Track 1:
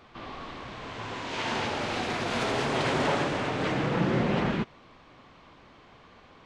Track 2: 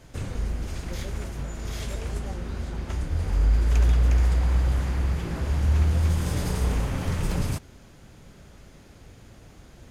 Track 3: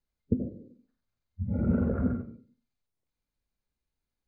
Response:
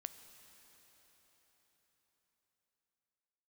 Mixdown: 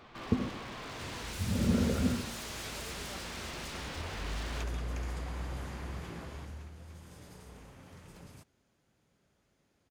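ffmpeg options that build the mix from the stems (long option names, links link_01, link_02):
-filter_complex "[0:a]acompressor=threshold=-29dB:ratio=3,aeval=exprs='0.0126*(abs(mod(val(0)/0.0126+3,4)-2)-1)':channel_layout=same,volume=-0.5dB[link_01];[1:a]highpass=frequency=170:poles=1,adelay=850,volume=-8.5dB,afade=type=out:start_time=6.06:duration=0.63:silence=0.237137[link_02];[2:a]volume=-2dB[link_03];[link_01][link_02][link_03]amix=inputs=3:normalize=0"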